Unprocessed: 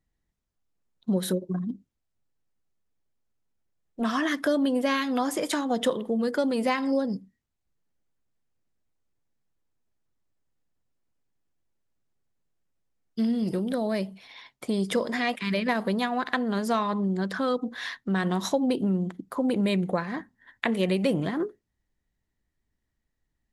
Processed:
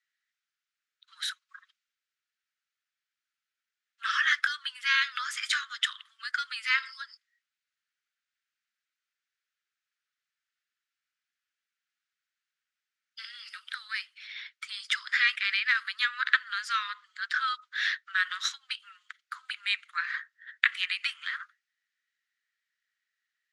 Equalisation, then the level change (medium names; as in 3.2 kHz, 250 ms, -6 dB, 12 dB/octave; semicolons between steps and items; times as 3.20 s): steep high-pass 1.3 kHz 72 dB/octave; distance through air 110 m; +8.0 dB